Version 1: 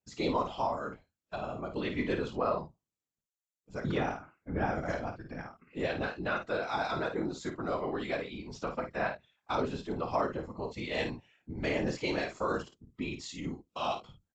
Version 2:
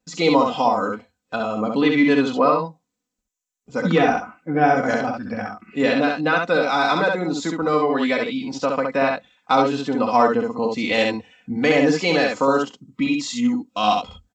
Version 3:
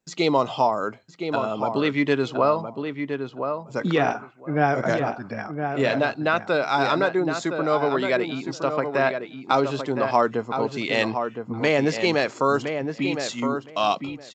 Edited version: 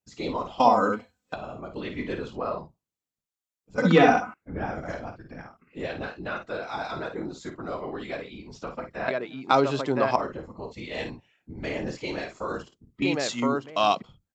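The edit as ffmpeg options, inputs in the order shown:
-filter_complex "[1:a]asplit=2[a][b];[2:a]asplit=2[c][d];[0:a]asplit=5[e][f][g][h][i];[e]atrim=end=0.602[j];[a]atrim=start=0.598:end=1.342[k];[f]atrim=start=1.338:end=3.782[l];[b]atrim=start=3.778:end=4.342[m];[g]atrim=start=4.338:end=9.082[n];[c]atrim=start=9.078:end=10.162[o];[h]atrim=start=10.158:end=13.022[p];[d]atrim=start=13.018:end=14.022[q];[i]atrim=start=14.018[r];[j][k]acrossfade=d=0.004:c1=hsin:c2=hsin[s];[s][l]acrossfade=d=0.004:c1=hsin:c2=hsin[t];[t][m]acrossfade=d=0.004:c1=hsin:c2=hsin[u];[u][n]acrossfade=d=0.004:c1=hsin:c2=hsin[v];[v][o]acrossfade=d=0.004:c1=hsin:c2=hsin[w];[w][p]acrossfade=d=0.004:c1=hsin:c2=hsin[x];[x][q]acrossfade=d=0.004:c1=hsin:c2=hsin[y];[y][r]acrossfade=d=0.004:c1=hsin:c2=hsin"

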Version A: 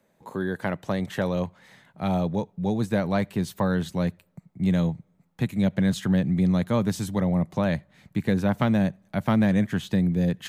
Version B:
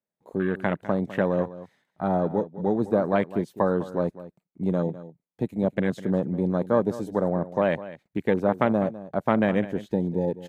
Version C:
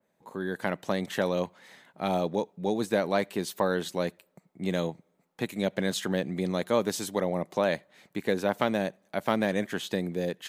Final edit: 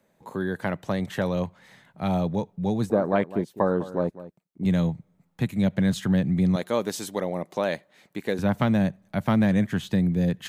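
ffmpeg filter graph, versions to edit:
-filter_complex "[0:a]asplit=3[a][b][c];[a]atrim=end=2.902[d];[1:a]atrim=start=2.898:end=4.652[e];[b]atrim=start=4.648:end=6.562[f];[2:a]atrim=start=6.558:end=8.392[g];[c]atrim=start=8.388[h];[d][e]acrossfade=d=0.004:c1=hsin:c2=hsin[i];[i][f]acrossfade=d=0.004:c1=hsin:c2=hsin[j];[j][g]acrossfade=d=0.004:c1=hsin:c2=hsin[k];[k][h]acrossfade=d=0.004:c1=hsin:c2=hsin"

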